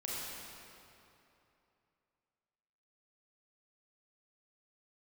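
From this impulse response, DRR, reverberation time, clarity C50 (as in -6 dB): -6.5 dB, 2.9 s, -4.0 dB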